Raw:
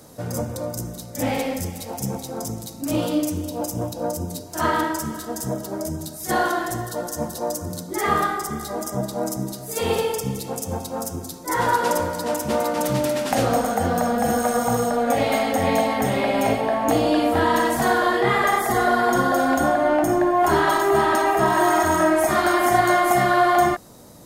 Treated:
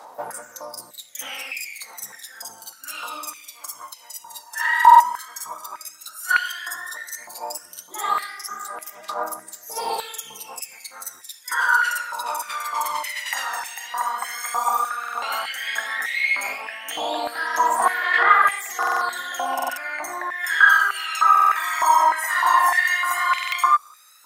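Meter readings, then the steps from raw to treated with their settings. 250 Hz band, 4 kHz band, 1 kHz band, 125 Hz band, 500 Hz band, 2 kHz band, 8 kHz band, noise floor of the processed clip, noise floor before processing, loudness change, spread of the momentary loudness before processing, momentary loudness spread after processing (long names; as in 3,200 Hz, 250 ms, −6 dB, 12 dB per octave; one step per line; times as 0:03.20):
−25.0 dB, +1.0 dB, +1.5 dB, below −30 dB, −15.0 dB, +5.5 dB, −1.0 dB, −47 dBFS, −37 dBFS, +1.0 dB, 11 LU, 20 LU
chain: phase shifter 0.11 Hz, delay 1.1 ms, feedback 78%
buffer that repeats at 0:04.77/0:14.99/0:18.78/0:19.54/0:21.33/0:23.29, samples 2,048, times 4
high-pass on a step sequencer 3.3 Hz 900–2,400 Hz
level −5.5 dB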